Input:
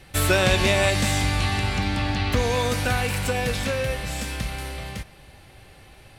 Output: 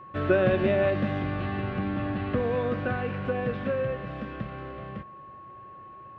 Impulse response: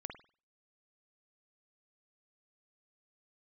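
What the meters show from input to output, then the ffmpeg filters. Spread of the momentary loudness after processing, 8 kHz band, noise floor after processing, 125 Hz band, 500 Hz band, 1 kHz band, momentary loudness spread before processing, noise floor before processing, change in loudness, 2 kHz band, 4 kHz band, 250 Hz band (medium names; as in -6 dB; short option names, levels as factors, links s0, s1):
22 LU, under -40 dB, -46 dBFS, -6.5 dB, -0.5 dB, -6.0 dB, 12 LU, -50 dBFS, -5.0 dB, -9.0 dB, -19.5 dB, -1.0 dB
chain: -af "highpass=110,equalizer=f=130:t=q:w=4:g=4,equalizer=f=210:t=q:w=4:g=5,equalizer=f=350:t=q:w=4:g=7,equalizer=f=570:t=q:w=4:g=5,equalizer=f=900:t=q:w=4:g=-9,equalizer=f=2200:t=q:w=4:g=-9,lowpass=f=2300:w=0.5412,lowpass=f=2300:w=1.3066,aeval=exprs='val(0)+0.0112*sin(2*PI*1100*n/s)':c=same,volume=0.596"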